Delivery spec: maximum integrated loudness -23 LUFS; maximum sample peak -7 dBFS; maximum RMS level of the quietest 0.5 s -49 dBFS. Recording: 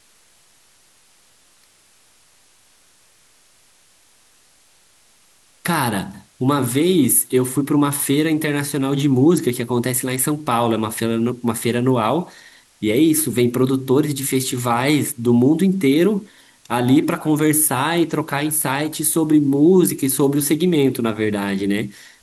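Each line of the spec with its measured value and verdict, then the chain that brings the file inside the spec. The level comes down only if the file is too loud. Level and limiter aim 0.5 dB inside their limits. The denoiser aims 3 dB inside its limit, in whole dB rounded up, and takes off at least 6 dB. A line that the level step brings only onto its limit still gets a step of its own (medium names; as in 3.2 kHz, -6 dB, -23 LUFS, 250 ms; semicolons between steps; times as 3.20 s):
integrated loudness -18.0 LUFS: fail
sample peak -5.0 dBFS: fail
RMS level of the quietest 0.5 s -55 dBFS: pass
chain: trim -5.5 dB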